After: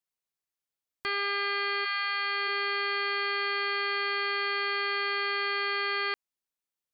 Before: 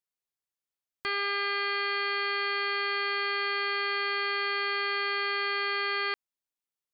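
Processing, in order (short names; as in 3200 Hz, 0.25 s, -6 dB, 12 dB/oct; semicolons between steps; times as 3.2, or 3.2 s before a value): 1.84–2.47 HPF 1000 Hz -> 360 Hz 24 dB/oct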